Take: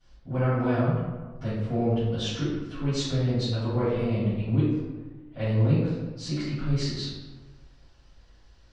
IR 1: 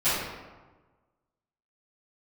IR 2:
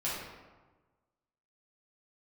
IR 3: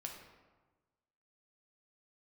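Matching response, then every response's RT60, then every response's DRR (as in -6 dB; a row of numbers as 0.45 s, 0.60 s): 1; 1.3 s, 1.3 s, 1.3 s; -19.0 dB, -9.0 dB, 1.0 dB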